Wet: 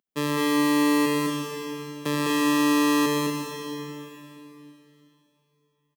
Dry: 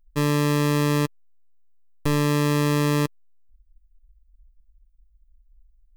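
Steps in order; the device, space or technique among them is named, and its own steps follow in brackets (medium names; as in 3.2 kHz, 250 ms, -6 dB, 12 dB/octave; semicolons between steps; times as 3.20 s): stadium PA (high-pass 180 Hz 24 dB/octave; peaking EQ 3.2 kHz +4.5 dB 0.41 oct; loudspeakers at several distances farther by 71 m -3 dB, 83 m -7 dB; reverberation RT60 3.3 s, pre-delay 67 ms, DRR 2 dB); trim -3 dB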